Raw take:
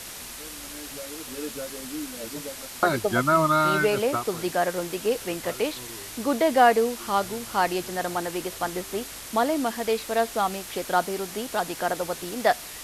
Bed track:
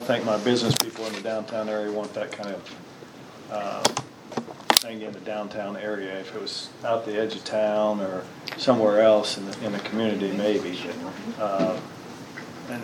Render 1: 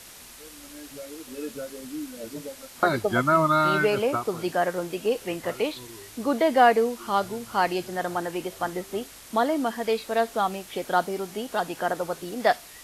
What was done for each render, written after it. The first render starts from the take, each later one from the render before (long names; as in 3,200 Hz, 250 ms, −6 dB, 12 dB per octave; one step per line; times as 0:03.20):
noise reduction from a noise print 7 dB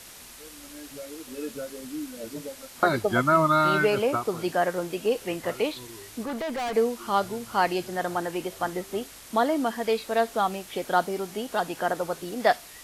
0:06.23–0:06.75: tube saturation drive 28 dB, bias 0.3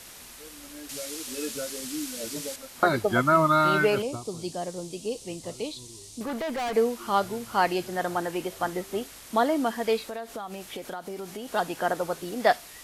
0:00.89–0:02.56: parametric band 6,600 Hz +10.5 dB 2.8 octaves
0:04.02–0:06.21: drawn EQ curve 120 Hz 0 dB, 1,100 Hz −12 dB, 1,500 Hz −22 dB, 4,000 Hz 0 dB, 6,100 Hz +3 dB, 9,100 Hz +3 dB, 13,000 Hz −13 dB
0:10.00–0:11.50: downward compressor 8 to 1, threshold −32 dBFS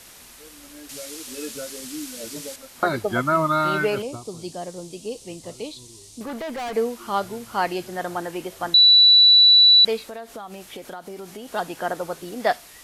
0:08.74–0:09.85: beep over 3,950 Hz −9 dBFS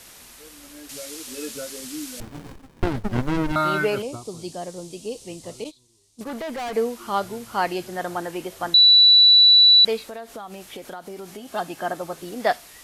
0:02.20–0:03.56: windowed peak hold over 65 samples
0:05.64–0:06.31: noise gate −36 dBFS, range −17 dB
0:11.39–0:12.18: notch comb filter 480 Hz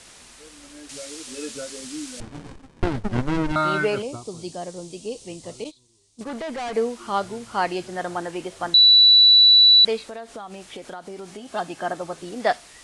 Butterworth low-pass 10,000 Hz 48 dB per octave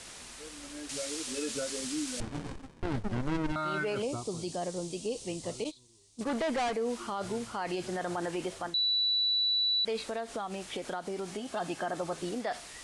reversed playback
downward compressor 4 to 1, threshold −23 dBFS, peak gain reduction 10 dB
reversed playback
brickwall limiter −25 dBFS, peak gain reduction 11 dB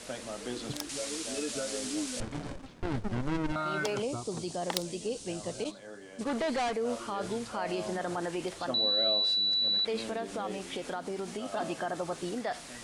mix in bed track −17 dB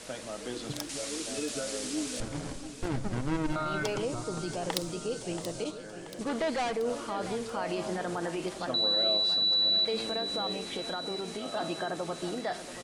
on a send: repeating echo 681 ms, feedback 56%, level −12 dB
on the sum: rectangular room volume 3,300 cubic metres, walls furnished, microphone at 0.6 metres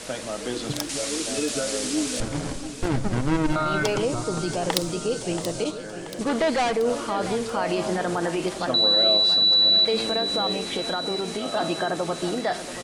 level +8 dB